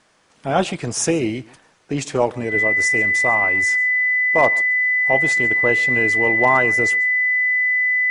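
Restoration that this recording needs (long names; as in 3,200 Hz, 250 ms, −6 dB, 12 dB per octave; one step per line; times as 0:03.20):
clipped peaks rebuilt −5 dBFS
notch filter 2,000 Hz, Q 30
echo removal 137 ms −22.5 dB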